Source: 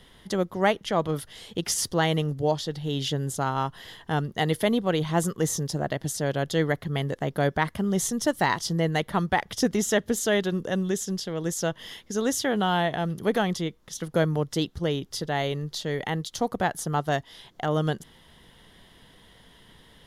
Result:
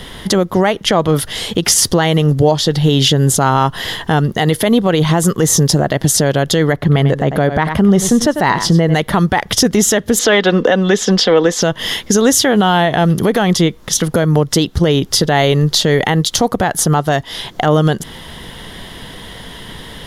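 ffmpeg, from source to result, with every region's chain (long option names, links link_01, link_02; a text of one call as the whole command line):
ffmpeg -i in.wav -filter_complex "[0:a]asettb=1/sr,asplit=3[link_01][link_02][link_03];[link_01]atrim=end=6.734[link_04];[link_02]atrim=start=6.73:end=8.94,asetpts=PTS-STARTPTS,afade=type=in:duration=0.004:curve=qsin,afade=type=out:start_time=2.206:duration=0.004:curve=qsin,highshelf=frequency=3800:gain=-9.5,aecho=1:1:95:0.211,atrim=end_sample=97461[link_05];[link_03]atrim=start=8.936[link_06];[link_04][link_05]acrossfade=duration=0.004:curve1=hsin:curve2=qsin[link_07];[link_07][link_06]acrossfade=duration=0.004:curve1=qsin:curve2=hsin,asettb=1/sr,asplit=3[link_08][link_09][link_10];[link_08]atrim=end=10.194[link_11];[link_09]atrim=start=10.19:end=11.62,asetpts=PTS-STARTPTS,afade=type=in:duration=0.004:curve=qsin,afade=type=out:start_time=1.426:duration=0.004:curve=qsin,acrossover=split=300 4600:gain=0.224 1 0.0708[link_12][link_13][link_14];[link_12][link_13][link_14]amix=inputs=3:normalize=0,aecho=1:1:4:0.41,atrim=end_sample=63063,acontrast=59[link_15];[link_10]atrim=start=11.616[link_16];[link_11][link_15]acrossfade=duration=0.004:curve1=hsin:curve2=qsin[link_17];[link_17][link_16]acrossfade=duration=0.004:curve1=qsin:curve2=hsin,acompressor=threshold=-30dB:ratio=3,alimiter=level_in=23dB:limit=-1dB:release=50:level=0:latency=1,volume=-1dB" out.wav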